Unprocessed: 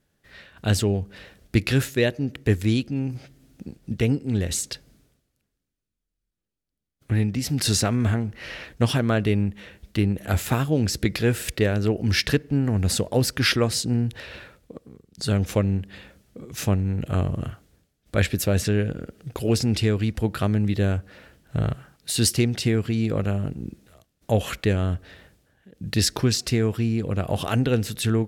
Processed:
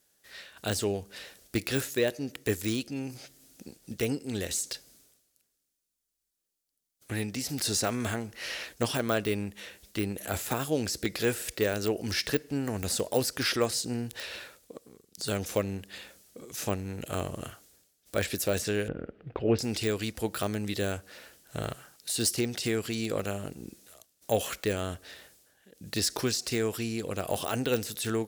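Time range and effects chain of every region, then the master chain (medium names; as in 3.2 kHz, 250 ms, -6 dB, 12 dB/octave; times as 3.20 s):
18.88–19.59 s: low-pass 2.6 kHz 24 dB/octave + tilt EQ -2 dB/octave
whole clip: de-esser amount 95%; tone controls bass -13 dB, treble +13 dB; trim -2 dB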